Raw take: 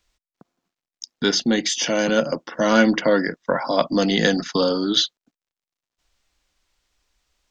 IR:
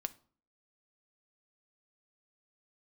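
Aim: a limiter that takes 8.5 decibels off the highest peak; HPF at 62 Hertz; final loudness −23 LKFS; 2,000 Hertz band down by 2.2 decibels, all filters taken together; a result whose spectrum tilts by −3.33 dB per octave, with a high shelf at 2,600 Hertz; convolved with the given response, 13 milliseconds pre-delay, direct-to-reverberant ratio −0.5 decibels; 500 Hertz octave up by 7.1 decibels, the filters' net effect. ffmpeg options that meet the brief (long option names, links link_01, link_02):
-filter_complex "[0:a]highpass=62,equalizer=frequency=500:width_type=o:gain=8,equalizer=frequency=2000:width_type=o:gain=-7.5,highshelf=frequency=2600:gain=8.5,alimiter=limit=-8dB:level=0:latency=1,asplit=2[link_01][link_02];[1:a]atrim=start_sample=2205,adelay=13[link_03];[link_02][link_03]afir=irnorm=-1:irlink=0,volume=1.5dB[link_04];[link_01][link_04]amix=inputs=2:normalize=0,volume=-8.5dB"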